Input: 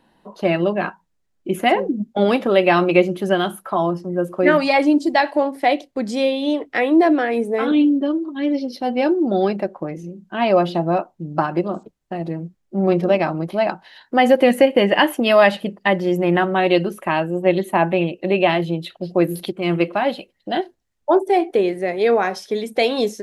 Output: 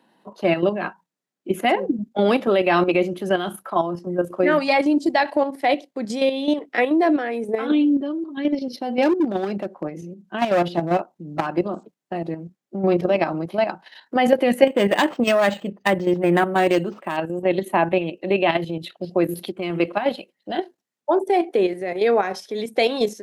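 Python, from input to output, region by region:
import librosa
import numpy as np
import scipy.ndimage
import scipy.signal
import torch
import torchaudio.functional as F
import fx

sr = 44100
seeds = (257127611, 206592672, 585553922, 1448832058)

y = fx.chain(x, sr, fx.peak_eq(hz=68.0, db=6.5, octaves=1.8),
    fx.overload_stage(gain_db=14.0), at=(9.02, 11.47))
y = fx.chain(y, sr, fx.self_delay(depth_ms=0.1),
    fx.low_shelf(hz=86.0, db=6.0),
    fx.resample_linear(factor=4), at=(14.67, 17.17))
y = scipy.signal.sosfilt(scipy.signal.butter(4, 170.0, 'highpass', fs=sr, output='sos'), y)
y = fx.level_steps(y, sr, step_db=9)
y = y * librosa.db_to_amplitude(1.5)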